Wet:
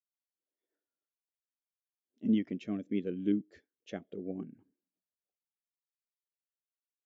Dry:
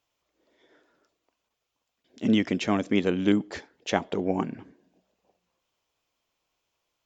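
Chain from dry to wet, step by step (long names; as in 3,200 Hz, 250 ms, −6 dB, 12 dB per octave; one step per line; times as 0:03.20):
0:02.59–0:04.59: parametric band 910 Hz −14 dB 0.6 octaves
every bin expanded away from the loudest bin 1.5 to 1
level −8.5 dB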